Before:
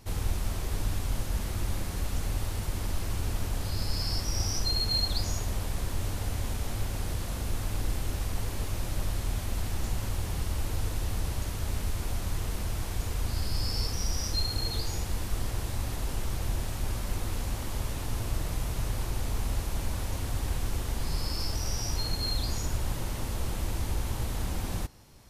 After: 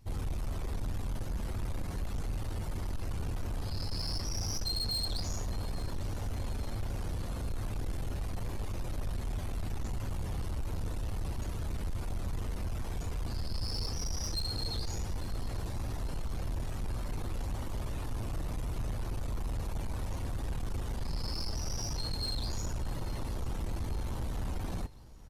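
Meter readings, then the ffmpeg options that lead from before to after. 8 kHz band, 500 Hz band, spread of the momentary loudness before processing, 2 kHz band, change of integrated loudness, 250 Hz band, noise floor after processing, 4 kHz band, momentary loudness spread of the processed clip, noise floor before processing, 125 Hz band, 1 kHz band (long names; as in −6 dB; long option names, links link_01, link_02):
−7.0 dB, −4.0 dB, 4 LU, −7.5 dB, −4.5 dB, −3.0 dB, −37 dBFS, −5.5 dB, 4 LU, −35 dBFS, −4.0 dB, −4.5 dB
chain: -filter_complex "[0:a]afftdn=noise_reduction=13:noise_floor=-45,asoftclip=type=tanh:threshold=-29.5dB,asplit=2[link_01][link_02];[link_02]aecho=0:1:849|1698|2547|3396:0.1|0.054|0.0292|0.0157[link_03];[link_01][link_03]amix=inputs=2:normalize=0"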